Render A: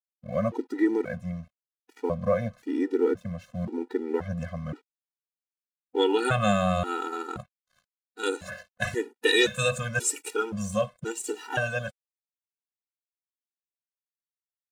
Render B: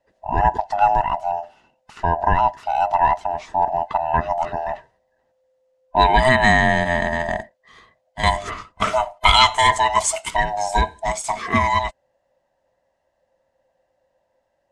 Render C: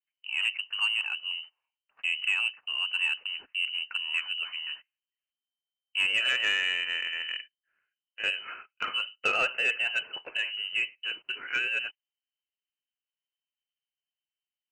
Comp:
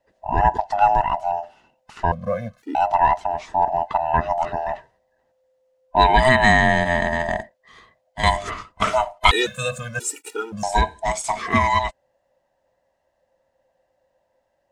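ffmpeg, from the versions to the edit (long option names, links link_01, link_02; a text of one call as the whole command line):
ffmpeg -i take0.wav -i take1.wav -filter_complex "[0:a]asplit=2[link_01][link_02];[1:a]asplit=3[link_03][link_04][link_05];[link_03]atrim=end=2.122[link_06];[link_01]atrim=start=2.118:end=2.752[link_07];[link_04]atrim=start=2.748:end=9.312[link_08];[link_02]atrim=start=9.308:end=10.632[link_09];[link_05]atrim=start=10.628[link_10];[link_06][link_07]acrossfade=duration=0.004:curve1=hsin:curve2=hsin[link_11];[link_11][link_08]acrossfade=duration=0.004:curve1=hsin:curve2=hsin[link_12];[link_12][link_09]acrossfade=duration=0.004:curve1=hsin:curve2=hsin[link_13];[link_13][link_10]acrossfade=duration=0.004:curve1=hsin:curve2=hsin" out.wav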